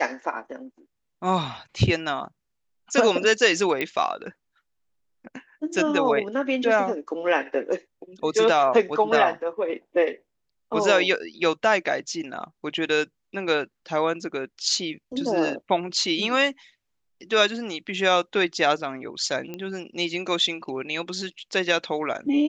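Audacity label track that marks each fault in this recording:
3.810000	3.810000	click −13 dBFS
19.540000	19.540000	click −20 dBFS

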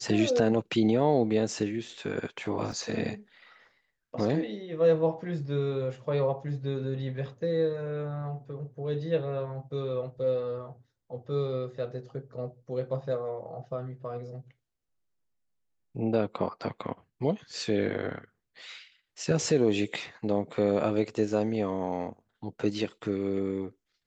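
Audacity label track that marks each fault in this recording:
2.720000	2.720000	drop-out 2.4 ms

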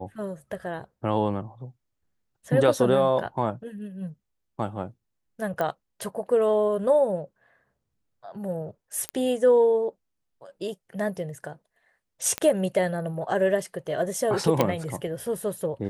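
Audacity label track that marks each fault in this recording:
5.610000	5.610000	click −15 dBFS
9.090000	9.090000	click −13 dBFS
12.380000	12.380000	click −11 dBFS
14.610000	14.610000	click −7 dBFS

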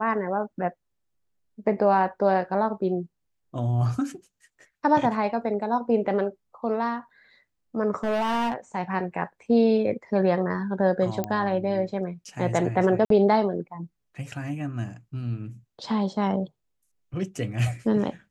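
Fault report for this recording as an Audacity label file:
8.030000	8.530000	clipping −21.5 dBFS
11.240000	11.240000	click −14 dBFS
13.050000	13.100000	drop-out 53 ms

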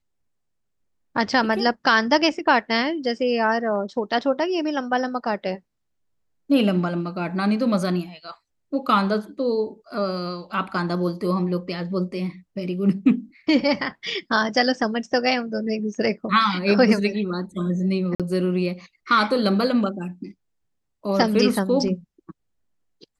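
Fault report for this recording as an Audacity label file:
18.150000	18.200000	drop-out 47 ms

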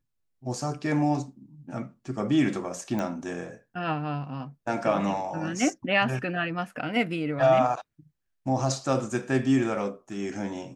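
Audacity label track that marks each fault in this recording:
2.990000	2.990000	click −18 dBFS

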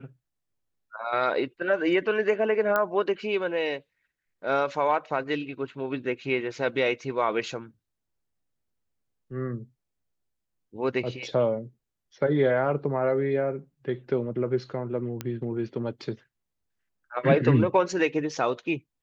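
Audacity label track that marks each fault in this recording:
2.760000	2.760000	click −12 dBFS
15.210000	15.210000	click −16 dBFS

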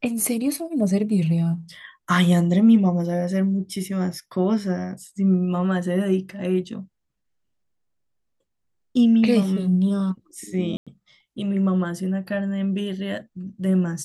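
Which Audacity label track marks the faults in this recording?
10.770000	10.870000	drop-out 96 ms

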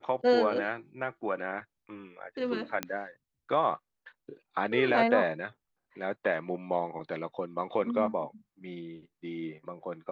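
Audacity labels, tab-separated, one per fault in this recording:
2.830000	2.830000	click −14 dBFS

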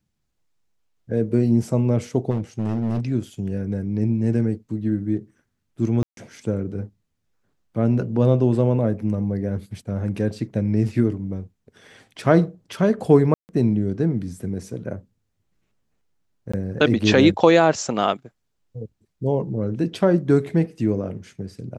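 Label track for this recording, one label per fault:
2.300000	3.010000	clipping −19.5 dBFS
6.030000	6.170000	drop-out 142 ms
13.340000	13.490000	drop-out 149 ms
16.520000	16.540000	drop-out 15 ms

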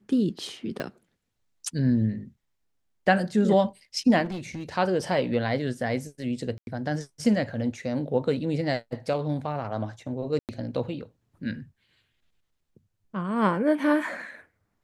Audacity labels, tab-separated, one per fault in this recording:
0.800000	0.800000	click −18 dBFS
4.240000	4.690000	clipping −29.5 dBFS
6.580000	6.670000	drop-out 91 ms
10.390000	10.490000	drop-out 98 ms

